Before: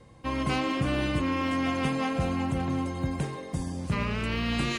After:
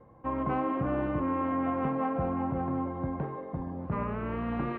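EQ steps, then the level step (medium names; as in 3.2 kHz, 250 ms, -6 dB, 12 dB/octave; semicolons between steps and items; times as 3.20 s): four-pole ladder low-pass 1.5 kHz, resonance 20%; bass shelf 200 Hz -7.5 dB; +5.5 dB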